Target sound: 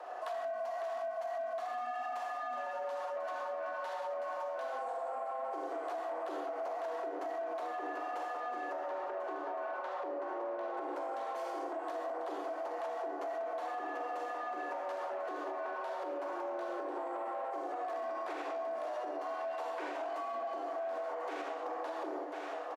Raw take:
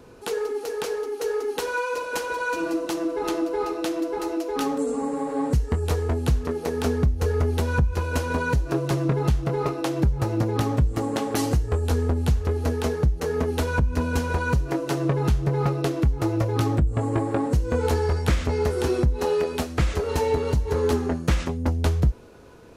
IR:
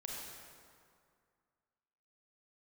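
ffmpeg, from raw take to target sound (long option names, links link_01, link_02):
-filter_complex "[0:a]asettb=1/sr,asplit=3[link_01][link_02][link_03];[link_01]atrim=end=8.734[link_04];[link_02]atrim=start=8.73:end=10.74,asetpts=PTS-STARTPTS,afade=type=in:duration=0.004:curve=qsin,afade=type=out:start_time=2.006:duration=0.004:curve=qsin,aemphasis=mode=reproduction:type=75kf[link_05];[link_03]atrim=start=10.736[link_06];[link_04][link_05]acrossfade=duration=0.004:curve1=hsin:curve2=qsin[link_07];[link_07][link_06]acrossfade=duration=0.004:curve1=qsin:curve2=hsin[link_08];[1:a]atrim=start_sample=2205,afade=type=out:start_time=0.26:duration=0.01,atrim=end_sample=11907[link_09];[link_08][link_09]afir=irnorm=-1:irlink=0,asplit=2[link_10][link_11];[link_11]highpass=frequency=720:poles=1,volume=22dB,asoftclip=type=tanh:threshold=-11.5dB[link_12];[link_10][link_12]amix=inputs=2:normalize=0,lowpass=frequency=1300:poles=1,volume=-6dB,equalizer=frequency=530:width_type=o:width=2.2:gain=7.5,aecho=1:1:1044:0.251,afreqshift=240,alimiter=limit=-17dB:level=0:latency=1:release=358,acrossover=split=170[link_13][link_14];[link_14]acompressor=threshold=-30dB:ratio=2.5[link_15];[link_13][link_15]amix=inputs=2:normalize=0,volume=-8.5dB"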